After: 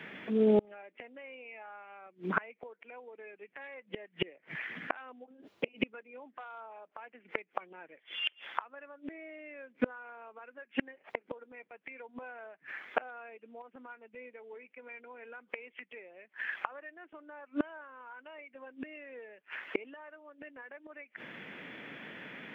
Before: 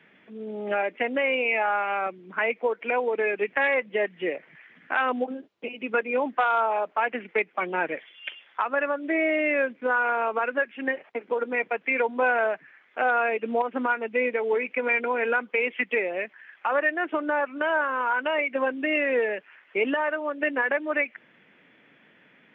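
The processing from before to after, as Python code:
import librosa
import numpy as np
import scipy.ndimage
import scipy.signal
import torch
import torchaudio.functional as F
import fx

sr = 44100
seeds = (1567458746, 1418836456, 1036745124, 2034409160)

y = fx.gate_flip(x, sr, shuts_db=-27.0, range_db=-35)
y = F.gain(torch.from_numpy(y), 11.0).numpy()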